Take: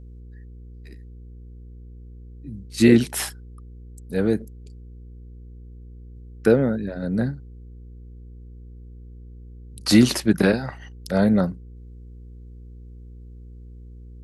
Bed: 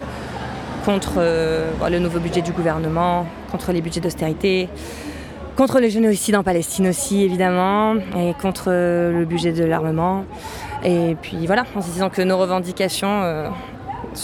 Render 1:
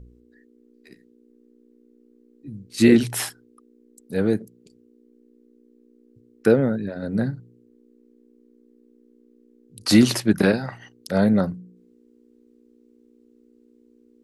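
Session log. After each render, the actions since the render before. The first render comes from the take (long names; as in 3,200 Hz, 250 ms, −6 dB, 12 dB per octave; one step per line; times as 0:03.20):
hum removal 60 Hz, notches 3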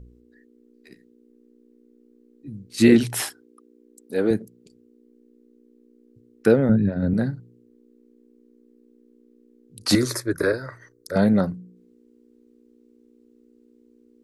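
0:03.21–0:04.31: low shelf with overshoot 210 Hz −10.5 dB, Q 1.5
0:06.69–0:07.14: bass and treble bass +13 dB, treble −11 dB
0:09.95–0:11.16: phaser with its sweep stopped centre 780 Hz, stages 6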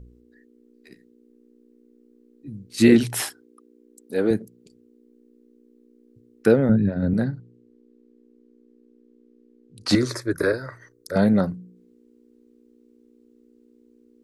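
0:07.24–0:10.22: high-frequency loss of the air 62 metres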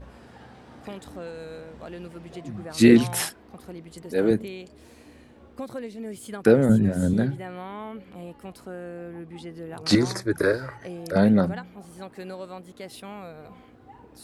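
mix in bed −20 dB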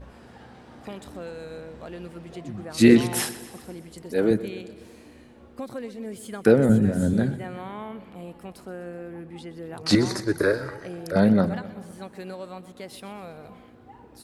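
repeating echo 125 ms, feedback 59%, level −15.5 dB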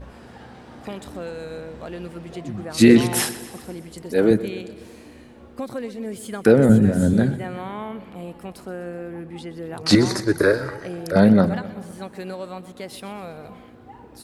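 level +4.5 dB
brickwall limiter −2 dBFS, peak gain reduction 3 dB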